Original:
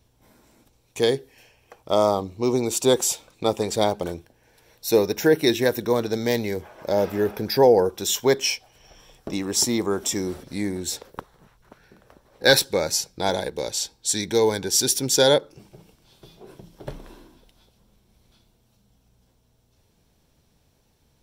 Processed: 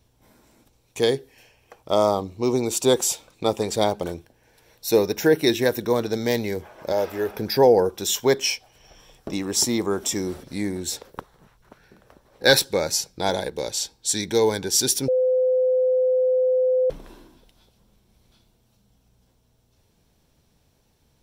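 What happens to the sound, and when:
6.92–7.35 s: peaking EQ 160 Hz -12 dB 1.5 oct
15.08–16.90 s: bleep 511 Hz -16.5 dBFS

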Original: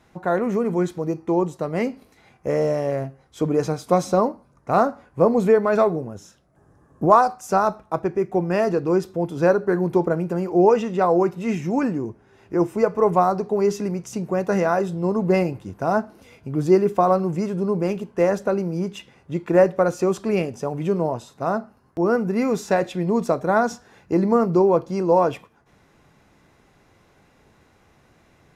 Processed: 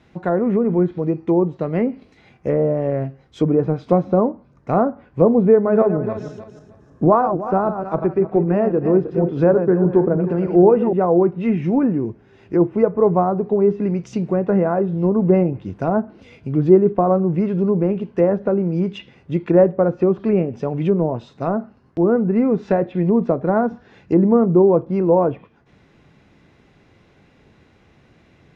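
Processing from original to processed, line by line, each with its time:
5.51–10.93 s: backward echo that repeats 155 ms, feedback 49%, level -8.5 dB
whole clip: frequency weighting D; low-pass that closes with the level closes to 1.1 kHz, closed at -18 dBFS; tilt EQ -4 dB/octave; trim -1 dB

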